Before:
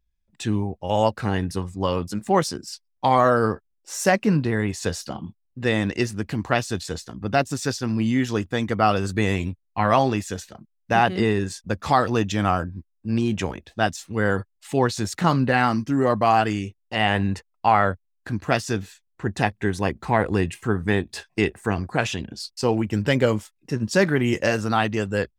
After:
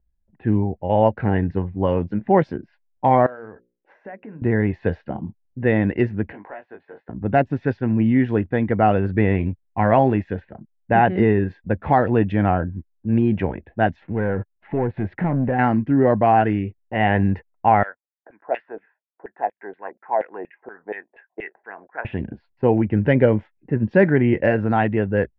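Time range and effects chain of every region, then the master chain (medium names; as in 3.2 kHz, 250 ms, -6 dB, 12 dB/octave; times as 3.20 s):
3.26–4.42 s: compression 10:1, threshold -32 dBFS + tilt EQ +3 dB/octave + hum notches 60/120/180/240/300/360/420/480/540 Hz
6.32–7.09 s: high-pass 610 Hz + compression 2.5:1, threshold -40 dBFS + doubling 20 ms -4 dB
14.02–15.59 s: low-pass that closes with the level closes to 1 kHz, closed at -15 dBFS + compression 1.5:1, threshold -43 dBFS + waveshaping leveller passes 2
17.83–22.05 s: high-pass 350 Hz + LFO band-pass saw down 4.2 Hz 510–3000 Hz
whole clip: low-pass 2 kHz 24 dB/octave; peaking EQ 1.2 kHz -15 dB 0.36 oct; level-controlled noise filter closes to 1.3 kHz, open at -17 dBFS; trim +4.5 dB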